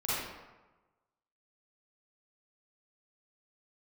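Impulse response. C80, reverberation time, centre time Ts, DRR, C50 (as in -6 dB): 0.0 dB, 1.2 s, 0.103 s, -11.0 dB, -5.5 dB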